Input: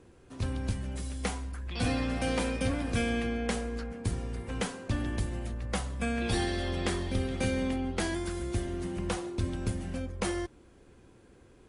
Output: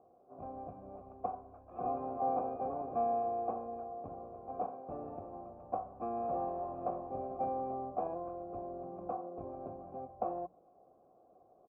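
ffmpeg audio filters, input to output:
-filter_complex "[0:a]asplit=3[a][b][c];[b]asetrate=22050,aresample=44100,atempo=2,volume=-4dB[d];[c]asetrate=66075,aresample=44100,atempo=0.66742,volume=-5dB[e];[a][d][e]amix=inputs=3:normalize=0,asplit=3[f][g][h];[f]bandpass=f=730:t=q:w=8,volume=0dB[i];[g]bandpass=f=1.09k:t=q:w=8,volume=-6dB[j];[h]bandpass=f=2.44k:t=q:w=8,volume=-9dB[k];[i][j][k]amix=inputs=3:normalize=0,bandreject=f=60:t=h:w=6,bandreject=f=120:t=h:w=6,bandreject=f=180:t=h:w=6,acrossover=split=950[l][m];[m]acrusher=bits=2:mix=0:aa=0.5[n];[l][n]amix=inputs=2:normalize=0,volume=8dB"

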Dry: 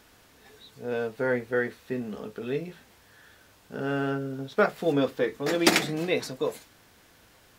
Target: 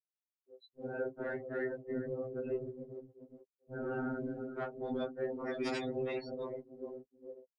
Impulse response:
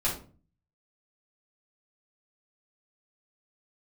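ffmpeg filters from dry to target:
-filter_complex "[0:a]asplit=2[a][b];[b]acompressor=threshold=-37dB:ratio=6,volume=3dB[c];[a][c]amix=inputs=2:normalize=0,highpass=210,highshelf=f=2.1k:g=-9.5,asplit=2[d][e];[e]adelay=417,lowpass=f=2.8k:p=1,volume=-11dB,asplit=2[f][g];[g]adelay=417,lowpass=f=2.8k:p=1,volume=0.52,asplit=2[h][i];[i]adelay=417,lowpass=f=2.8k:p=1,volume=0.52,asplit=2[j][k];[k]adelay=417,lowpass=f=2.8k:p=1,volume=0.52,asplit=2[l][m];[m]adelay=417,lowpass=f=2.8k:p=1,volume=0.52,asplit=2[n][o];[o]adelay=417,lowpass=f=2.8k:p=1,volume=0.52[p];[d][f][h][j][l][n][p]amix=inputs=7:normalize=0,afftfilt=real='re*gte(hypot(re,im),0.0355)':imag='im*gte(hypot(re,im),0.0355)':win_size=1024:overlap=0.75,afftfilt=real='hypot(re,im)*cos(2*PI*random(0))':imag='hypot(re,im)*sin(2*PI*random(1))':win_size=512:overlap=0.75,asoftclip=type=tanh:threshold=-18dB,equalizer=f=6.5k:t=o:w=1.6:g=5.5,alimiter=level_in=5dB:limit=-24dB:level=0:latency=1:release=80,volume=-5dB,afftfilt=real='re*2.45*eq(mod(b,6),0)':imag='im*2.45*eq(mod(b,6),0)':win_size=2048:overlap=0.75,volume=2dB"

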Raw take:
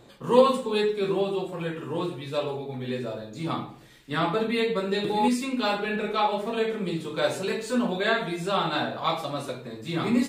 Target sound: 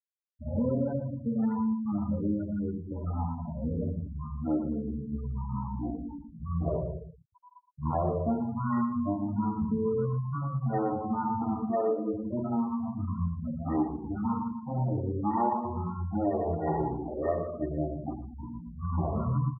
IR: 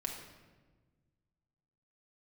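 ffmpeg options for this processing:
-filter_complex "[0:a]aecho=1:1:6.9:0.95,acompressor=threshold=-22dB:ratio=4,lowpass=f=2k:t=q:w=4.3,acrusher=bits=7:mix=0:aa=0.000001,asetrate=23152,aresample=44100,afftfilt=real='re*gte(hypot(re,im),0.0708)':imag='im*gte(hypot(re,im),0.0708)':win_size=1024:overlap=0.75,equalizer=f=1.2k:t=o:w=1.1:g=-8,asplit=2[a][b];[b]adelay=116.6,volume=-12dB,highshelf=f=4k:g=-2.62[c];[a][c]amix=inputs=2:normalize=0,volume=-4dB"

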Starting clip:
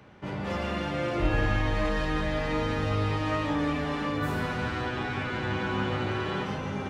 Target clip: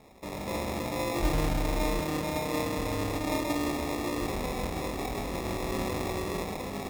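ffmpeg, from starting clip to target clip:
-filter_complex "[0:a]equalizer=f=130:t=o:w=1.1:g=-12,acrusher=samples=29:mix=1:aa=0.000001,asettb=1/sr,asplit=3[a][b][c];[a]atrim=end=1.994[d];[b]atrim=start=1.99:end=2.77,asetpts=PTS-STARTPTS,afade=t=in:d=0.004:c=qsin,afade=t=out:st=0.776:d=0.004:c=qsin,highpass=f=68:w=0.5412,highpass=f=68:w=1.3066[e];[c]atrim=start=2.766[f];[d][e]acrossfade=d=0.004:c1=hsin:c2=qsin[g];[g][f]acrossfade=d=0.004:c1=qsin:c2=hsin"

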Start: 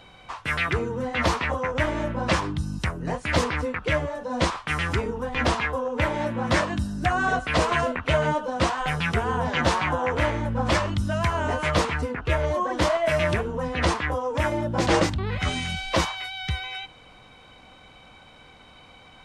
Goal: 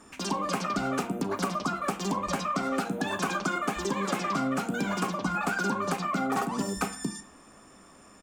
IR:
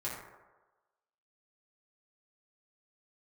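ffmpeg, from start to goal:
-filter_complex "[0:a]highshelf=f=2.6k:g=-9.5,bandreject=f=50:t=h:w=6,bandreject=f=100:t=h:w=6,bandreject=f=150:t=h:w=6,bandreject=f=200:t=h:w=6,bandreject=f=250:t=h:w=6,bandreject=f=300:t=h:w=6,bandreject=f=350:t=h:w=6,bandreject=f=400:t=h:w=6,bandreject=f=450:t=h:w=6,asplit=2[a][b];[b]adelay=35,volume=-12dB[c];[a][c]amix=inputs=2:normalize=0,asetrate=103194,aresample=44100,equalizer=f=125:t=o:w=1:g=-4,equalizer=f=250:t=o:w=1:g=9,equalizer=f=1k:t=o:w=1:g=8,equalizer=f=2k:t=o:w=1:g=-6,equalizer=f=4k:t=o:w=1:g=-7,equalizer=f=8k:t=o:w=1:g=6,acompressor=threshold=-22dB:ratio=3,asplit=2[d][e];[1:a]atrim=start_sample=2205,asetrate=74970,aresample=44100,adelay=32[f];[e][f]afir=irnorm=-1:irlink=0,volume=-9dB[g];[d][g]amix=inputs=2:normalize=0,volume=-4dB"

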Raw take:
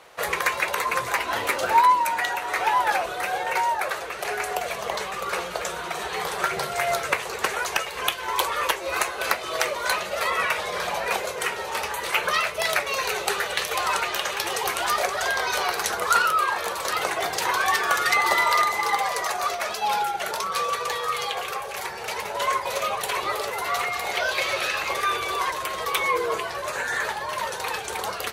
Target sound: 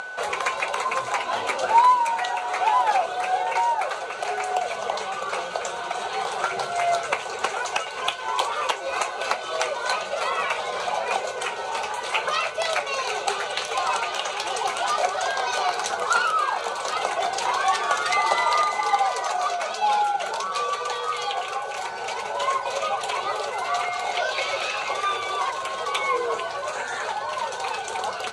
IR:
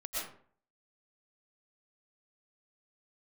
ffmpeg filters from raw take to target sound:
-af "acrusher=bits=6:mode=log:mix=0:aa=0.000001,aeval=exprs='val(0)+0.0141*sin(2*PI*1500*n/s)':c=same,acompressor=mode=upward:threshold=-26dB:ratio=2.5,highpass=130,equalizer=f=160:t=q:w=4:g=-8,equalizer=f=320:t=q:w=4:g=-7,equalizer=f=760:t=q:w=4:g=6,equalizer=f=1.8k:t=q:w=4:g=-9,equalizer=f=5.2k:t=q:w=4:g=-4,lowpass=f=8.3k:w=0.5412,lowpass=f=8.3k:w=1.3066"

